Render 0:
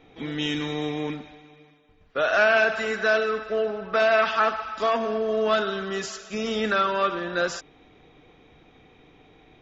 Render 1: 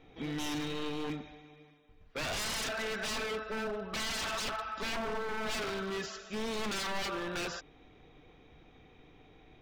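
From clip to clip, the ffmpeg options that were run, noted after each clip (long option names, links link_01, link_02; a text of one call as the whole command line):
ffmpeg -i in.wav -filter_complex "[0:a]acrossover=split=6000[link_01][link_02];[link_02]acompressor=threshold=-60dB:ratio=4:attack=1:release=60[link_03];[link_01][link_03]amix=inputs=2:normalize=0,aeval=exprs='0.0531*(abs(mod(val(0)/0.0531+3,4)-2)-1)':channel_layout=same,lowshelf=frequency=79:gain=8,volume=-5.5dB" out.wav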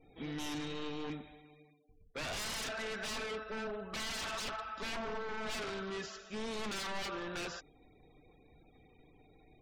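ffmpeg -i in.wav -af "afftfilt=real='re*gte(hypot(re,im),0.00126)':imag='im*gte(hypot(re,im),0.00126)':win_size=1024:overlap=0.75,volume=-4dB" out.wav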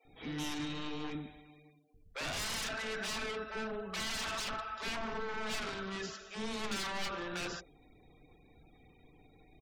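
ffmpeg -i in.wav -filter_complex "[0:a]acrossover=split=500[link_01][link_02];[link_01]adelay=50[link_03];[link_03][link_02]amix=inputs=2:normalize=0,volume=2dB" out.wav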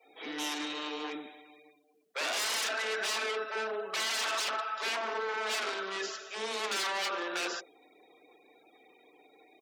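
ffmpeg -i in.wav -af "highpass=frequency=350:width=0.5412,highpass=frequency=350:width=1.3066,volume=6dB" out.wav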